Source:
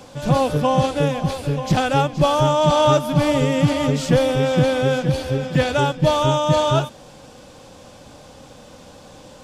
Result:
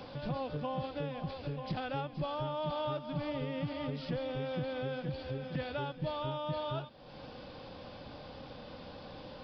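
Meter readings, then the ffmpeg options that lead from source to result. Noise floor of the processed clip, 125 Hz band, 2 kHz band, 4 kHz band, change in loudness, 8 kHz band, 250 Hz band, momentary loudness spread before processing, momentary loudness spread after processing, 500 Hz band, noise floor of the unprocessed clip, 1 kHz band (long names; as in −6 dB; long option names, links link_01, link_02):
−50 dBFS, −19.0 dB, −18.5 dB, −18.5 dB, −20.0 dB, below −40 dB, −18.5 dB, 5 LU, 12 LU, −19.0 dB, −44 dBFS, −19.0 dB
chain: -af "acompressor=threshold=-38dB:ratio=2.5,aresample=11025,aresample=44100,volume=-4dB"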